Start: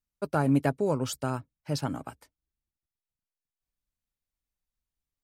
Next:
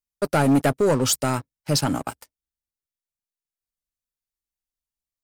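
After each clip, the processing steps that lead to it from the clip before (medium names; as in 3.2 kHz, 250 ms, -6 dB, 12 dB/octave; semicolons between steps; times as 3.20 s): tone controls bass -3 dB, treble +6 dB; waveshaping leveller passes 3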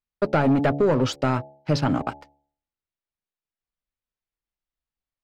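de-hum 71.27 Hz, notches 12; compression, threshold -19 dBFS, peak gain reduction 4.5 dB; distance through air 230 m; trim +3.5 dB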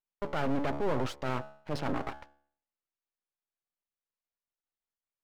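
transient shaper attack -7 dB, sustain +1 dB; overdrive pedal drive 16 dB, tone 1 kHz, clips at -12 dBFS; half-wave rectifier; trim -5.5 dB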